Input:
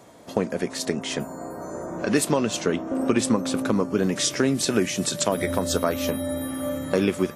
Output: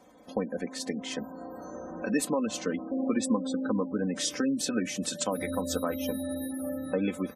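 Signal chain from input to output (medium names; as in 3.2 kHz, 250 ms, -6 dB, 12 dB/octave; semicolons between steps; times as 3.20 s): comb 3.9 ms, depth 69%; spectral gate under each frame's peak -25 dB strong; trim -8.5 dB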